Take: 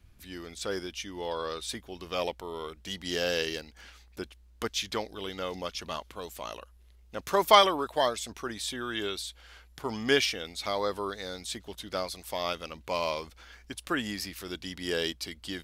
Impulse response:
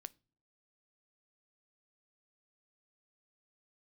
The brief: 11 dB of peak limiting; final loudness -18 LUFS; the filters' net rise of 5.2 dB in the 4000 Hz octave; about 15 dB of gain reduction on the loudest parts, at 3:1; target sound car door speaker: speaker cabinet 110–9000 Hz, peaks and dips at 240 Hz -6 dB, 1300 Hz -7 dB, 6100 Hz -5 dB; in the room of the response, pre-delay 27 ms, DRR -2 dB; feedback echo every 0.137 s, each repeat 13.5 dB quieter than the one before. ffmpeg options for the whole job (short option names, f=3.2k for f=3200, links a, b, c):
-filter_complex "[0:a]equalizer=f=4k:t=o:g=7.5,acompressor=threshold=-32dB:ratio=3,alimiter=level_in=3dB:limit=-24dB:level=0:latency=1,volume=-3dB,aecho=1:1:137|274:0.211|0.0444,asplit=2[a][b];[1:a]atrim=start_sample=2205,adelay=27[c];[b][c]afir=irnorm=-1:irlink=0,volume=8dB[d];[a][d]amix=inputs=2:normalize=0,highpass=110,equalizer=f=240:t=q:w=4:g=-6,equalizer=f=1.3k:t=q:w=4:g=-7,equalizer=f=6.1k:t=q:w=4:g=-5,lowpass=f=9k:w=0.5412,lowpass=f=9k:w=1.3066,volume=17.5dB"